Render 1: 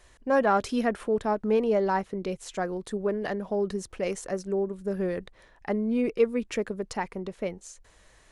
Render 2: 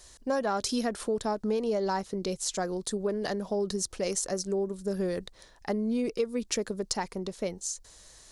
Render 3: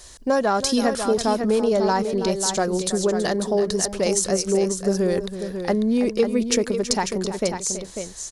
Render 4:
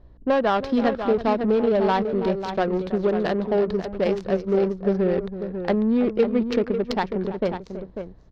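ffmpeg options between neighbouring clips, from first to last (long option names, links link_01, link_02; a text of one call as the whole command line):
ffmpeg -i in.wav -af "highshelf=frequency=3400:width_type=q:width=1.5:gain=10,acompressor=threshold=-25dB:ratio=6" out.wav
ffmpeg -i in.wav -af "aecho=1:1:327|545:0.237|0.398,volume=8.5dB" out.wav
ffmpeg -i in.wav -af "adynamicsmooth=sensitivity=1:basefreq=560,aeval=exprs='val(0)+0.00178*(sin(2*PI*60*n/s)+sin(2*PI*2*60*n/s)/2+sin(2*PI*3*60*n/s)/3+sin(2*PI*4*60*n/s)/4+sin(2*PI*5*60*n/s)/5)':channel_layout=same,highshelf=frequency=6000:width_type=q:width=1.5:gain=-12.5" out.wav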